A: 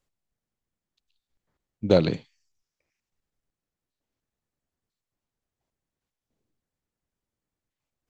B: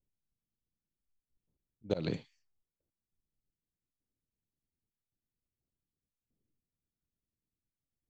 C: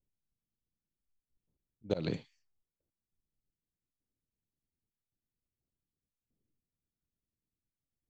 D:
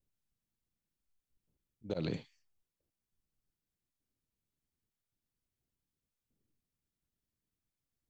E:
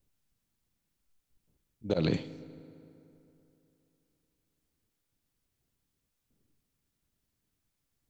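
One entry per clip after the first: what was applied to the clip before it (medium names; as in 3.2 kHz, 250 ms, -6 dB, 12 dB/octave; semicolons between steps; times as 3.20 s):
slow attack 263 ms; level-controlled noise filter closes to 320 Hz, open at -37 dBFS; trim -3.5 dB
no audible change
peak limiter -26.5 dBFS, peak gain reduction 9 dB; trim +1.5 dB
reverberation RT60 3.1 s, pre-delay 4 ms, DRR 15 dB; trim +8 dB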